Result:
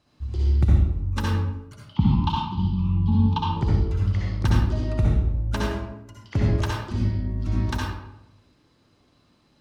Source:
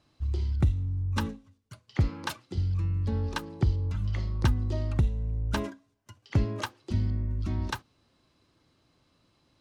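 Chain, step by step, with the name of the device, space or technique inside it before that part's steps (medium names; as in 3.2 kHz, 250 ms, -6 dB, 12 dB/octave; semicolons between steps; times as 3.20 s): 1.85–3.50 s: FFT filter 110 Hz 0 dB, 200 Hz +12 dB, 610 Hz -26 dB, 890 Hz +12 dB, 1.8 kHz -20 dB, 3.1 kHz +7 dB, 9.1 kHz -26 dB; bathroom (reverberation RT60 0.85 s, pre-delay 57 ms, DRR -4 dB)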